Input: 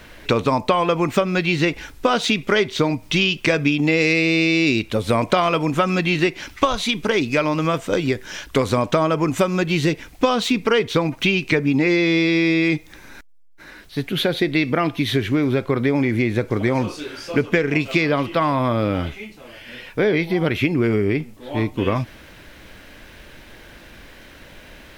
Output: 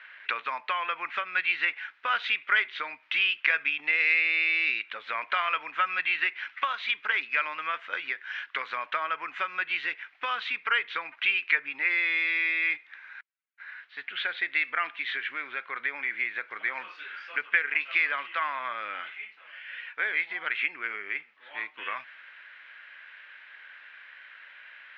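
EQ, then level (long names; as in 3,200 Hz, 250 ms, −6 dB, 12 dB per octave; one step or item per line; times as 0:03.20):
high-pass with resonance 1,600 Hz, resonance Q 2.2
low-pass filter 3,000 Hz 24 dB per octave
−6.0 dB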